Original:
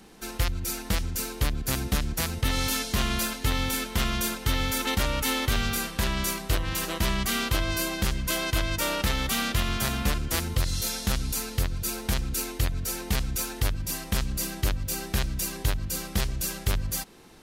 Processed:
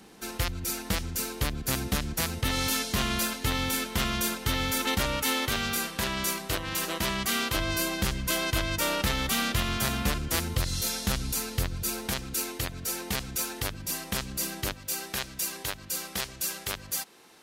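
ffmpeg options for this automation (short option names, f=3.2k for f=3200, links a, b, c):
-af "asetnsamples=n=441:p=0,asendcmd='5.17 highpass f 200;7.55 highpass f 64;12.08 highpass f 220;14.73 highpass f 590',highpass=f=85:p=1"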